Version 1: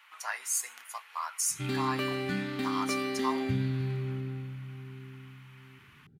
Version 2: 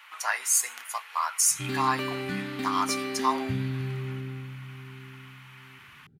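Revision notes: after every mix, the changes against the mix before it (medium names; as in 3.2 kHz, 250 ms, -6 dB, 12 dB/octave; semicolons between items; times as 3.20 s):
speech +7.5 dB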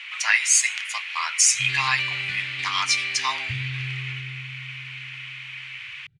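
speech +6.0 dB; master: add FFT filter 140 Hz 0 dB, 210 Hz -24 dB, 1.4 kHz -5 dB, 2.3 kHz +12 dB, 4.6 kHz +5 dB, 8.3 kHz -1 dB, 13 kHz -24 dB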